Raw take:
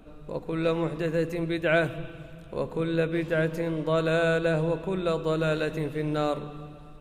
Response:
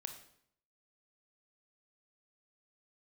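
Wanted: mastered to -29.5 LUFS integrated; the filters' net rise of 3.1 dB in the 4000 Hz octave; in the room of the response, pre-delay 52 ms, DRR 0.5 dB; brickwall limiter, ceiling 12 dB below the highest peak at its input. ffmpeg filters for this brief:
-filter_complex "[0:a]equalizer=f=4k:t=o:g=3.5,alimiter=limit=-23dB:level=0:latency=1,asplit=2[a][b];[1:a]atrim=start_sample=2205,adelay=52[c];[b][c]afir=irnorm=-1:irlink=0,volume=2.5dB[d];[a][d]amix=inputs=2:normalize=0,volume=1dB"

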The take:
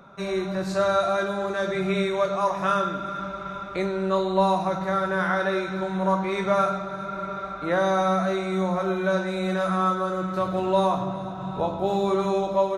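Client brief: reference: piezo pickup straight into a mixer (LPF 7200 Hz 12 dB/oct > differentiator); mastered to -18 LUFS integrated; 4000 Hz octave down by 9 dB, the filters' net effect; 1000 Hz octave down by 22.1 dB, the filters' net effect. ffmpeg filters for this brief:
-af "lowpass=7.2k,aderivative,equalizer=f=1k:t=o:g=-8,equalizer=f=4k:t=o:g=-3,volume=28dB"

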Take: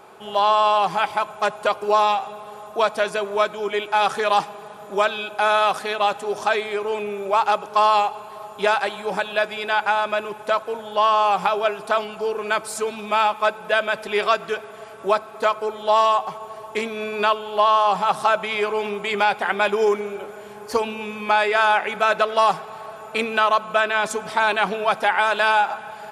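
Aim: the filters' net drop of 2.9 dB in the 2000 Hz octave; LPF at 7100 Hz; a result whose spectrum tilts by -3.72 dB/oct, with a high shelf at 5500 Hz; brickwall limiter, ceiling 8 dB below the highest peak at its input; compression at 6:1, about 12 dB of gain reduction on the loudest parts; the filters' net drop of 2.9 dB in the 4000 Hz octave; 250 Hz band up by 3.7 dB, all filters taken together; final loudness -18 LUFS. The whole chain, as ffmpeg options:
-af "lowpass=7.1k,equalizer=f=250:t=o:g=5,equalizer=f=2k:t=o:g=-4.5,equalizer=f=4k:t=o:g=-4.5,highshelf=f=5.5k:g=8,acompressor=threshold=-27dB:ratio=6,volume=14dB,alimiter=limit=-7.5dB:level=0:latency=1"

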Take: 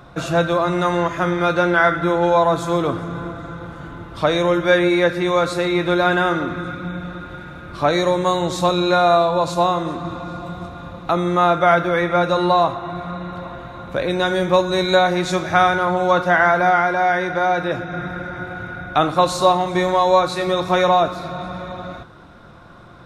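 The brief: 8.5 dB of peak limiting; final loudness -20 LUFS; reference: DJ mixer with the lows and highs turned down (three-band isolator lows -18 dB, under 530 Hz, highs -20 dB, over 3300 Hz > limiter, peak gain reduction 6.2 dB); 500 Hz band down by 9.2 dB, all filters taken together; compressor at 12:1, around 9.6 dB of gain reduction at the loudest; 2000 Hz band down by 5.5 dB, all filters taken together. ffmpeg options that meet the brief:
-filter_complex "[0:a]equalizer=f=500:t=o:g=-5.5,equalizer=f=2k:t=o:g=-7,acompressor=threshold=-23dB:ratio=12,alimiter=limit=-19dB:level=0:latency=1,acrossover=split=530 3300:gain=0.126 1 0.1[a][b][c];[a][b][c]amix=inputs=3:normalize=0,volume=15.5dB,alimiter=limit=-10dB:level=0:latency=1"

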